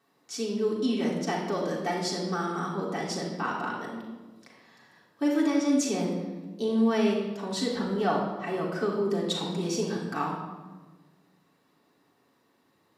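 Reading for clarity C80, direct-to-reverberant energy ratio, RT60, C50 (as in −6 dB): 5.0 dB, −5.5 dB, 1.3 s, 2.5 dB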